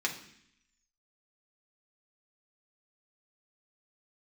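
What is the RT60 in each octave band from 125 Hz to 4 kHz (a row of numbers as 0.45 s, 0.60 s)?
0.85 s, 0.90 s, 0.65 s, 0.65 s, 0.85 s, 0.85 s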